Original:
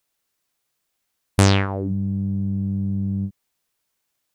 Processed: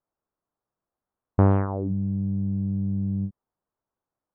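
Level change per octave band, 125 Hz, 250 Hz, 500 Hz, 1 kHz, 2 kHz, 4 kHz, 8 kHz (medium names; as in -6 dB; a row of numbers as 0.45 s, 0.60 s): -2.5 dB, -2.5 dB, -2.5 dB, -3.5 dB, -15.5 dB, under -35 dB, under -40 dB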